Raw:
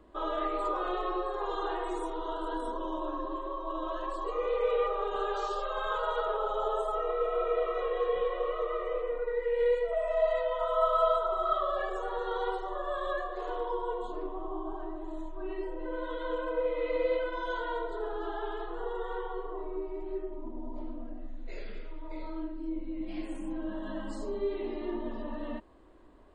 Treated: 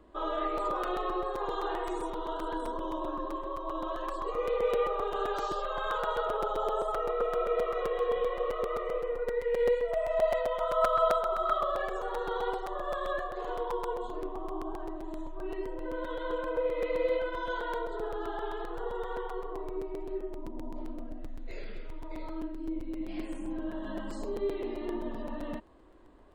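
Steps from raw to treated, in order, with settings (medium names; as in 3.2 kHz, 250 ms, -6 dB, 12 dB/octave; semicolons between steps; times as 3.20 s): crackling interface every 0.13 s, samples 256, repeat, from 0.57 s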